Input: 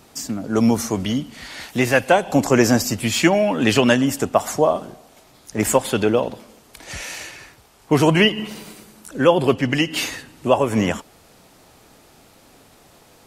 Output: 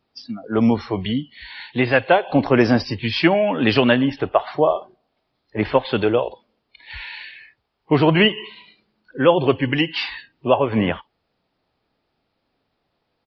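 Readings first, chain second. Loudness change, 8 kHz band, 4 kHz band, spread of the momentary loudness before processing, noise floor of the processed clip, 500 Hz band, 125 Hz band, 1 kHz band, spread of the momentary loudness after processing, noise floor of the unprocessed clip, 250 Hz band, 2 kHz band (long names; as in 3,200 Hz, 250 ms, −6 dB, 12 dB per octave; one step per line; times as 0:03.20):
0.0 dB, below −25 dB, −0.5 dB, 15 LU, −73 dBFS, 0.0 dB, −0.5 dB, 0.0 dB, 17 LU, −52 dBFS, −0.5 dB, 0.0 dB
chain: noise reduction from a noise print of the clip's start 21 dB
downsampling to 11,025 Hz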